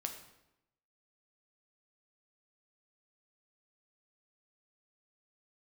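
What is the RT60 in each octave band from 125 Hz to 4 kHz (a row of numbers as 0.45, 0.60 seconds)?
1.0, 0.95, 0.90, 0.85, 0.80, 0.70 seconds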